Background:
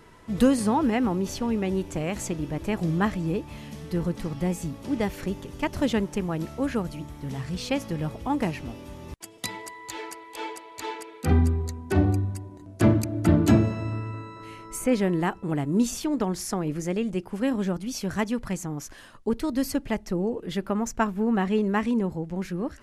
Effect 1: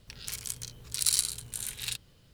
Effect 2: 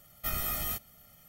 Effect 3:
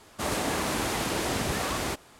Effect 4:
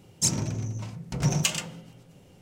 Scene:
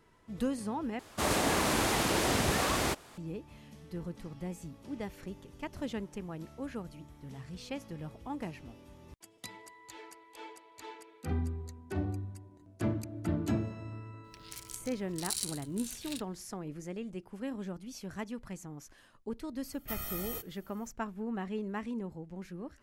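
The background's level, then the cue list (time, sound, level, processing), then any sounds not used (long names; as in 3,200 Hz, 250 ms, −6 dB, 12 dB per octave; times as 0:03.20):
background −13 dB
0:00.99: overwrite with 3
0:14.24: mix in 1 −9 dB
0:19.64: mix in 2 −6.5 dB
not used: 4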